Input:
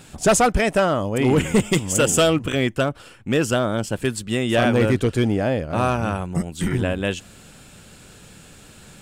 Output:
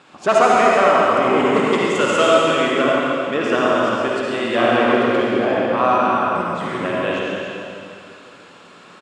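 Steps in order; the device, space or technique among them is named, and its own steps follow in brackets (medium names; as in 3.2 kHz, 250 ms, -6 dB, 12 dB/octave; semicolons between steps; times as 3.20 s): station announcement (band-pass 310–3600 Hz; peaking EQ 1.1 kHz +11 dB 0.38 oct; loudspeakers at several distances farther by 47 m -9 dB, 98 m -11 dB; reverberation RT60 2.5 s, pre-delay 50 ms, DRR -4 dB); trim -1.5 dB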